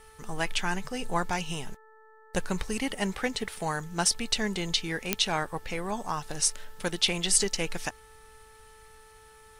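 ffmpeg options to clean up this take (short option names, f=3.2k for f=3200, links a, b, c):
-af "adeclick=t=4,bandreject=f=438.1:t=h:w=4,bandreject=f=876.2:t=h:w=4,bandreject=f=1.3143k:t=h:w=4,bandreject=f=1.7524k:t=h:w=4"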